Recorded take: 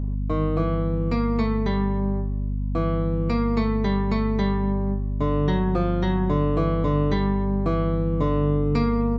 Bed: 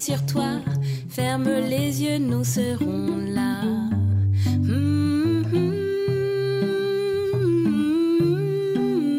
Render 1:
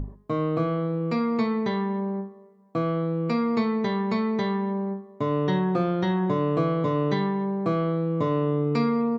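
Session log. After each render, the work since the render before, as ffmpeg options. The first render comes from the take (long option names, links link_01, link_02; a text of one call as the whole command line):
ffmpeg -i in.wav -af "bandreject=frequency=50:width_type=h:width=6,bandreject=frequency=100:width_type=h:width=6,bandreject=frequency=150:width_type=h:width=6,bandreject=frequency=200:width_type=h:width=6,bandreject=frequency=250:width_type=h:width=6,bandreject=frequency=300:width_type=h:width=6" out.wav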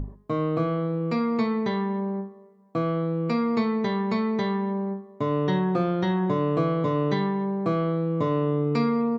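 ffmpeg -i in.wav -af anull out.wav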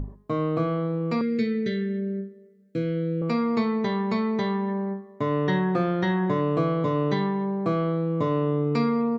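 ffmpeg -i in.wav -filter_complex "[0:a]asettb=1/sr,asplit=3[link_01][link_02][link_03];[link_01]atrim=end=1.214[link_04];[link_02]atrim=start=1.21:end=3.22,asetpts=PTS-STARTPTS,afade=type=in:duration=0.004:curve=qsin,afade=type=out:start_time=2.006:duration=0.004:curve=qsin,asuperstop=centerf=910:order=8:qfactor=0.96[link_05];[link_03]atrim=start=3.216[link_06];[link_04][link_05]acrossfade=duration=0.004:curve1=hsin:curve2=qsin[link_07];[link_07][link_06]acrossfade=duration=0.004:curve1=qsin:curve2=hsin,asettb=1/sr,asplit=3[link_08][link_09][link_10];[link_08]atrim=end=4.684[link_11];[link_09]atrim=start=4.68:end=6.41,asetpts=PTS-STARTPTS,afade=type=in:duration=0.004:curve=qsin,afade=type=out:start_time=1.726:duration=0.004:curve=qsin,equalizer=frequency=1800:width_type=o:width=0.41:gain=7[link_12];[link_10]atrim=start=6.406[link_13];[link_11][link_12]acrossfade=duration=0.004:curve1=hsin:curve2=qsin[link_14];[link_14][link_13]acrossfade=duration=0.004:curve1=qsin:curve2=hsin" out.wav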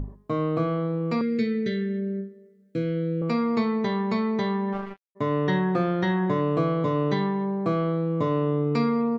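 ffmpeg -i in.wav -filter_complex "[0:a]asplit=3[link_01][link_02][link_03];[link_01]afade=type=out:start_time=4.72:duration=0.02[link_04];[link_02]acrusher=bits=3:mix=0:aa=0.5,afade=type=in:start_time=4.72:duration=0.02,afade=type=out:start_time=5.15:duration=0.02[link_05];[link_03]afade=type=in:start_time=5.15:duration=0.02[link_06];[link_04][link_05][link_06]amix=inputs=3:normalize=0" out.wav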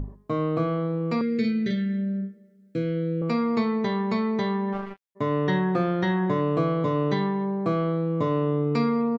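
ffmpeg -i in.wav -filter_complex "[0:a]asplit=3[link_01][link_02][link_03];[link_01]afade=type=out:start_time=1.43:duration=0.02[link_04];[link_02]asplit=2[link_05][link_06];[link_06]adelay=42,volume=-2.5dB[link_07];[link_05][link_07]amix=inputs=2:normalize=0,afade=type=in:start_time=1.43:duration=0.02,afade=type=out:start_time=2.76:duration=0.02[link_08];[link_03]afade=type=in:start_time=2.76:duration=0.02[link_09];[link_04][link_08][link_09]amix=inputs=3:normalize=0" out.wav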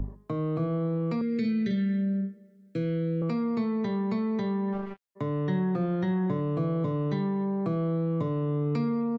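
ffmpeg -i in.wav -filter_complex "[0:a]acrossover=split=200|660[link_01][link_02][link_03];[link_02]alimiter=level_in=4dB:limit=-24dB:level=0:latency=1,volume=-4dB[link_04];[link_03]acompressor=threshold=-42dB:ratio=6[link_05];[link_01][link_04][link_05]amix=inputs=3:normalize=0" out.wav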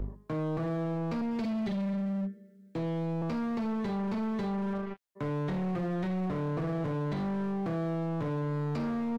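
ffmpeg -i in.wav -af "volume=30dB,asoftclip=hard,volume=-30dB" out.wav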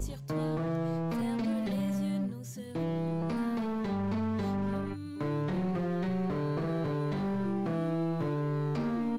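ffmpeg -i in.wav -i bed.wav -filter_complex "[1:a]volume=-19.5dB[link_01];[0:a][link_01]amix=inputs=2:normalize=0" out.wav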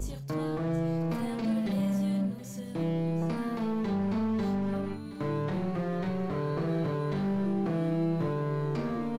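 ffmpeg -i in.wav -filter_complex "[0:a]asplit=2[link_01][link_02];[link_02]adelay=36,volume=-7dB[link_03];[link_01][link_03]amix=inputs=2:normalize=0,aecho=1:1:722:0.188" out.wav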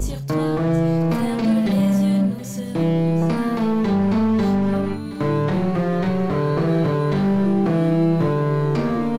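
ffmpeg -i in.wav -af "volume=11dB" out.wav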